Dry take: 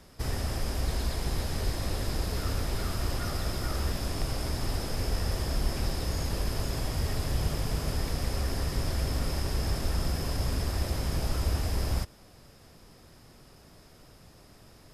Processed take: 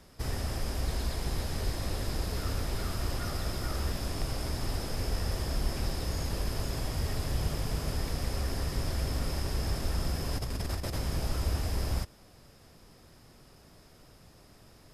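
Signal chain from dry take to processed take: 10.33–10.98 s: compressor with a negative ratio -30 dBFS, ratio -0.5; trim -2 dB

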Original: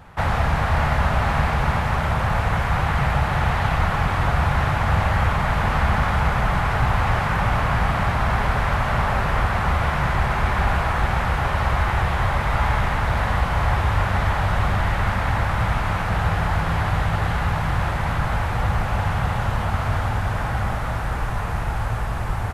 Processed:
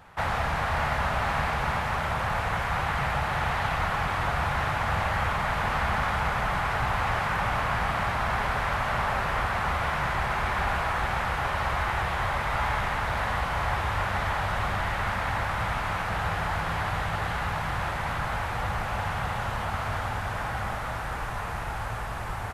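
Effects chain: bass shelf 340 Hz -8.5 dB; trim -3 dB

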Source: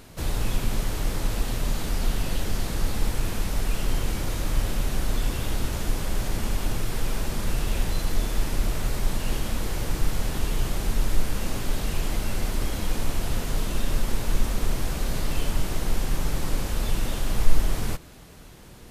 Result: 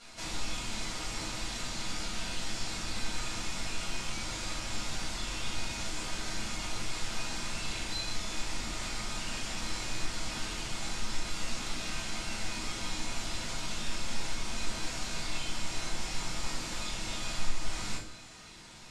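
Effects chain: low-pass 7.5 kHz 24 dB/octave; tilt EQ +3.5 dB/octave; compression, threshold -32 dBFS, peak gain reduction 8 dB; feedback comb 310 Hz, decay 0.62 s, mix 80%; simulated room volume 430 m³, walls furnished, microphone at 6.9 m

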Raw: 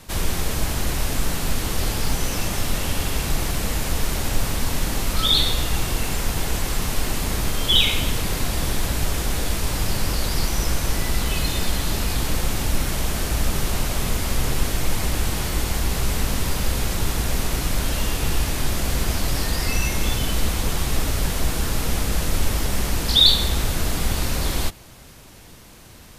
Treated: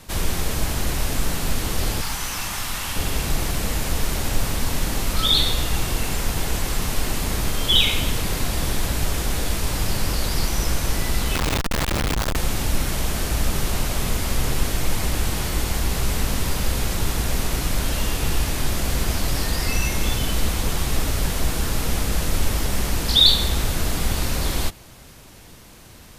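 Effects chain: 2.01–2.96 s: resonant low shelf 720 Hz -8 dB, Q 1.5; 11.35–12.36 s: Schmitt trigger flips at -28.5 dBFS

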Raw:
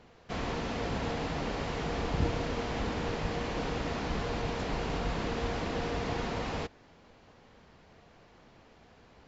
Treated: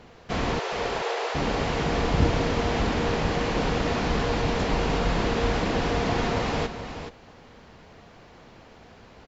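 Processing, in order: 0.59–1.35 s: elliptic high-pass 380 Hz, stop band 40 dB; on a send: delay 425 ms -9.5 dB; on the sum: trim +8 dB

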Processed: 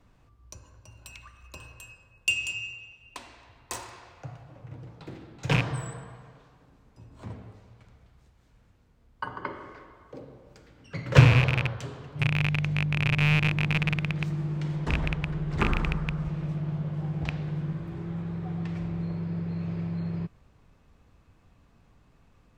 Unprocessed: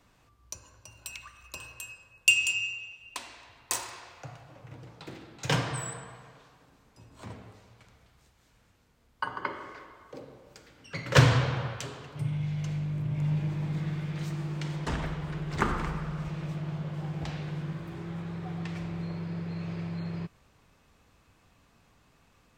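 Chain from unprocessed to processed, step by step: rattle on loud lows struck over -28 dBFS, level -10 dBFS; tilt EQ -2 dB/octave; trim -1.5 dB

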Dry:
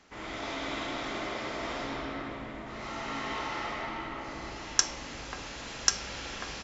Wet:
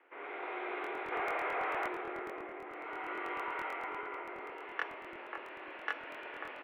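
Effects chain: 1.12–1.88 s: overdrive pedal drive 21 dB, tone 1.9 kHz, clips at -23 dBFS; mistuned SSB +88 Hz 220–2500 Hz; on a send at -19.5 dB: reverberation RT60 0.40 s, pre-delay 54 ms; on the sum: crackling interface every 0.11 s, samples 1024, repeat, from 0.82 s; trim -3.5 dB

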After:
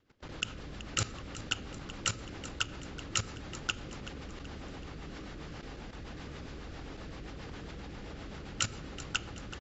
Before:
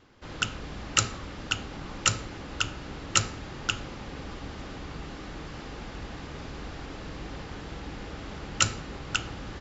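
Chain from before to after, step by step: rotary cabinet horn 7.5 Hz; level held to a coarse grid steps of 15 dB; feedback delay 378 ms, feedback 47%, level -15 dB; trim +1 dB

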